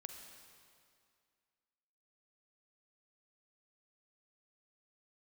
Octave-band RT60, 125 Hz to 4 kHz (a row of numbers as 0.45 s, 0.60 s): 2.1 s, 2.3 s, 2.2 s, 2.2 s, 2.1 s, 2.0 s